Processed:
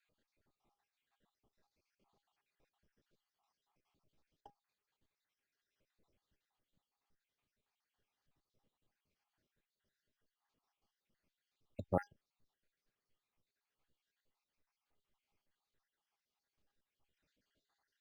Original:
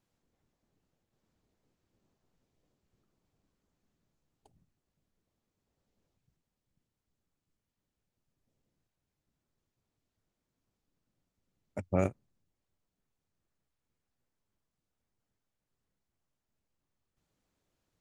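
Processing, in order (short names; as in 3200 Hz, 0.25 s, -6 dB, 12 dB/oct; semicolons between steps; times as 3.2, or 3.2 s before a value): random spectral dropouts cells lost 80%; low shelf 440 Hz -8.5 dB; in parallel at +1.5 dB: compressor, threshold -48 dBFS, peak gain reduction 18 dB; on the sum: resonator 820 Hz, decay 0.16 s, harmonics all, mix 70%; decimation joined by straight lines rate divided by 4×; gain +10 dB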